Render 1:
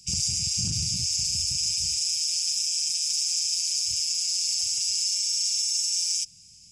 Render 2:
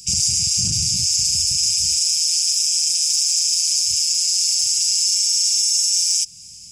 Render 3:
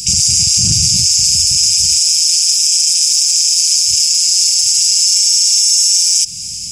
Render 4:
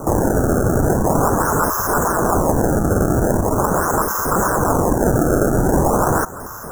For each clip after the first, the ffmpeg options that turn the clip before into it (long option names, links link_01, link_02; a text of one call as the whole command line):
ffmpeg -i in.wav -filter_complex "[0:a]asplit=2[link_01][link_02];[link_02]alimiter=level_in=0.5dB:limit=-24dB:level=0:latency=1:release=219,volume=-0.5dB,volume=3dB[link_03];[link_01][link_03]amix=inputs=2:normalize=0,highshelf=frequency=6800:gain=9.5" out.wav
ffmpeg -i in.wav -af "alimiter=level_in=17dB:limit=-1dB:release=50:level=0:latency=1,volume=-1dB" out.wav
ffmpeg -i in.wav -af "acrusher=samples=25:mix=1:aa=0.000001:lfo=1:lforange=40:lforate=0.42,asuperstop=centerf=3100:order=12:qfactor=0.67,volume=-4dB" out.wav